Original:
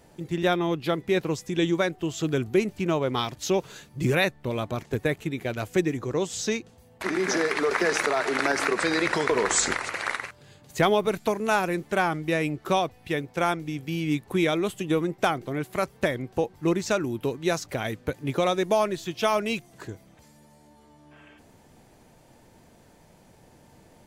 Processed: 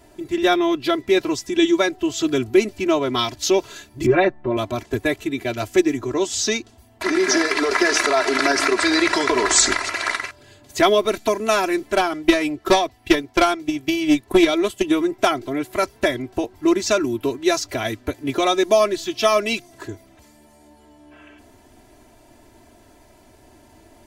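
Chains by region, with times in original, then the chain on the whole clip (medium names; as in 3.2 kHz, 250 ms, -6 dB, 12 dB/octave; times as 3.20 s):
4.06–4.57 s: low-pass 1.4 kHz + comb 5.6 ms, depth 96%
11.93–14.84 s: transient shaper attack +12 dB, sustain -3 dB + valve stage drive 12 dB, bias 0.3
whole clip: comb 3 ms, depth 95%; dynamic bell 4.9 kHz, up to +6 dB, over -44 dBFS, Q 1.2; trim +2.5 dB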